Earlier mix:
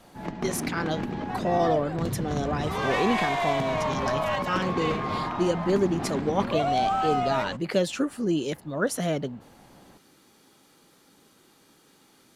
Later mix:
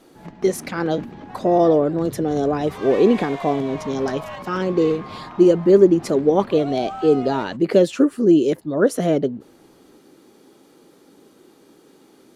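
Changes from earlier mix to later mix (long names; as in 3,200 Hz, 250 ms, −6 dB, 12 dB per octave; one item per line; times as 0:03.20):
speech: add parametric band 370 Hz +13 dB 1.8 octaves
background −6.5 dB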